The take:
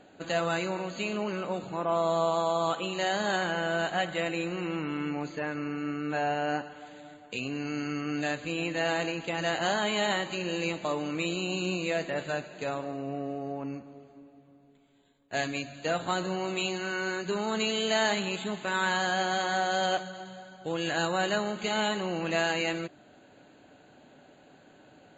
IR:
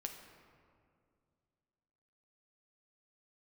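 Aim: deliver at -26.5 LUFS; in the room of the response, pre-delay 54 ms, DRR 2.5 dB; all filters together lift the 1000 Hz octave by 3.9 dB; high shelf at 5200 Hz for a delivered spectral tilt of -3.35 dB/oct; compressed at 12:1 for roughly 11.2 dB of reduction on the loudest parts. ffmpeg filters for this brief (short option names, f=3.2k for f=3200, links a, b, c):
-filter_complex "[0:a]equalizer=f=1k:t=o:g=5.5,highshelf=f=5.2k:g=-3.5,acompressor=threshold=-32dB:ratio=12,asplit=2[a][b];[1:a]atrim=start_sample=2205,adelay=54[c];[b][c]afir=irnorm=-1:irlink=0,volume=-0.5dB[d];[a][d]amix=inputs=2:normalize=0,volume=8dB"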